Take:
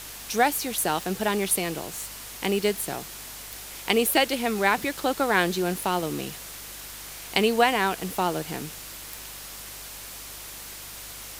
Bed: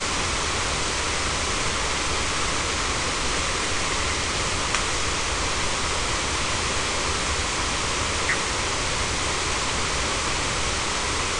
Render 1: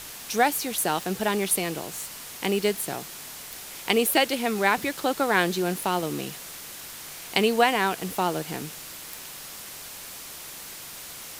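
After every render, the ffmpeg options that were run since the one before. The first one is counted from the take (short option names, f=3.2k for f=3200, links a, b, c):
-af "bandreject=f=50:t=h:w=4,bandreject=f=100:t=h:w=4"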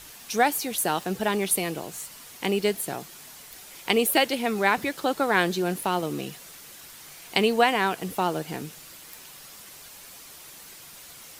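-af "afftdn=nr=7:nf=-41"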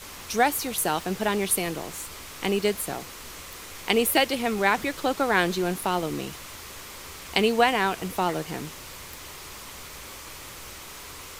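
-filter_complex "[1:a]volume=-18.5dB[a];[0:a][a]amix=inputs=2:normalize=0"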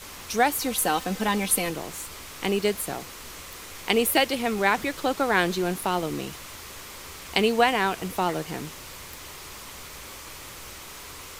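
-filter_complex "[0:a]asettb=1/sr,asplit=3[a][b][c];[a]atrim=end=0.604[d];[b]atrim=start=0.6:end=1.7,asetpts=PTS-STARTPTS,afade=t=in:d=0.004:c=qsin,afade=t=out:st=1.096:d=0.004:c=qsin,aecho=1:1:3.9:0.65,atrim=end_sample=48510[e];[c]atrim=start=1.696[f];[d][e]acrossfade=d=0.004:c1=hsin:c2=qsin[g];[g][f]acrossfade=d=0.004:c1=qsin:c2=hsin"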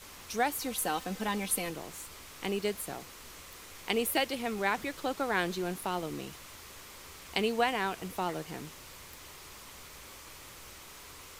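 -af "volume=-8dB"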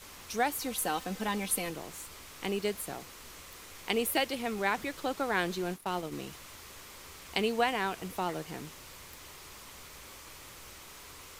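-filter_complex "[0:a]asplit=3[a][b][c];[a]afade=t=out:st=5.62:d=0.02[d];[b]agate=range=-33dB:threshold=-35dB:ratio=3:release=100:detection=peak,afade=t=in:st=5.62:d=0.02,afade=t=out:st=6.11:d=0.02[e];[c]afade=t=in:st=6.11:d=0.02[f];[d][e][f]amix=inputs=3:normalize=0"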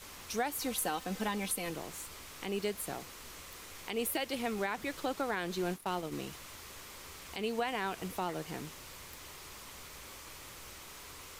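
-af "alimiter=limit=-23dB:level=0:latency=1:release=199"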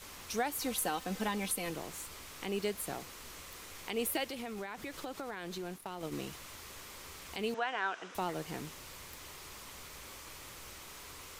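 -filter_complex "[0:a]asettb=1/sr,asplit=3[a][b][c];[a]atrim=end=4.304[d];[b]atrim=start=4.3:end=6.01,asetpts=PTS-STARTPTS,afade=t=in:d=0.004:c=qsin,afade=t=out:st=1.706:d=0.004:c=qsin,acompressor=threshold=-38dB:ratio=4:attack=3.2:release=140:knee=1:detection=peak[e];[c]atrim=start=6.006[f];[d][e]acrossfade=d=0.004:c1=hsin:c2=qsin[g];[g][f]acrossfade=d=0.004:c1=qsin:c2=hsin,asettb=1/sr,asplit=3[h][i][j];[h]atrim=end=7.544[k];[i]atrim=start=7.54:end=8.15,asetpts=PTS-STARTPTS,afade=t=in:d=0.004:c=qsin,afade=t=out:st=0.606:d=0.004:c=qsin,highpass=440,equalizer=f=460:t=q:w=4:g=-3,equalizer=f=1.5k:t=q:w=4:g=8,equalizer=f=2.2k:t=q:w=4:g=-4,equalizer=f=4.5k:t=q:w=4:g=-9,lowpass=f=6k:w=0.5412,lowpass=f=6k:w=1.3066[l];[j]atrim=start=8.146[m];[k][l]acrossfade=d=0.004:c1=hsin:c2=qsin[n];[n][m]acrossfade=d=0.004:c1=qsin:c2=hsin"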